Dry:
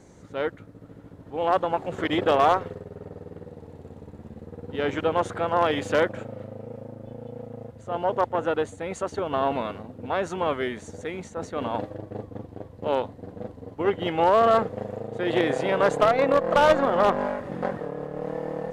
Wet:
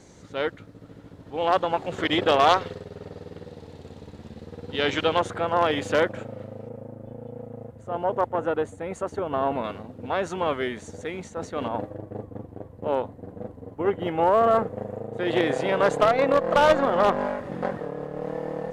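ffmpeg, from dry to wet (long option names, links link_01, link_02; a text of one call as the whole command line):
ffmpeg -i in.wav -af "asetnsamples=nb_out_samples=441:pad=0,asendcmd='2.47 equalizer g 14;5.19 equalizer g 2;6.69 equalizer g -7.5;9.64 equalizer g 1.5;11.68 equalizer g -9;15.18 equalizer g 1',equalizer=frequency=4200:width_type=o:width=1.8:gain=7.5" out.wav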